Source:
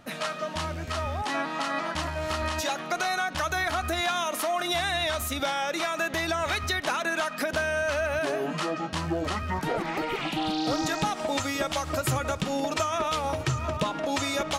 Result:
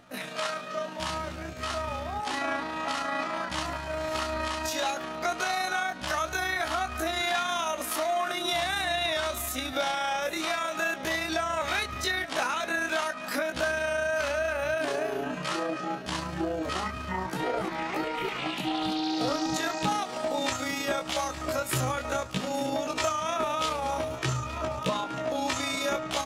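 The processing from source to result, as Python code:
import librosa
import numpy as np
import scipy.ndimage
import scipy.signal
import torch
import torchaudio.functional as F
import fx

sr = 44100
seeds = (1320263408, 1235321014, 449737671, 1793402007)

p1 = x + fx.echo_feedback(x, sr, ms=481, feedback_pct=45, wet_db=-16, dry=0)
p2 = fx.stretch_grains(p1, sr, factor=1.8, grain_ms=71.0)
y = fx.low_shelf(p2, sr, hz=110.0, db=-7.5)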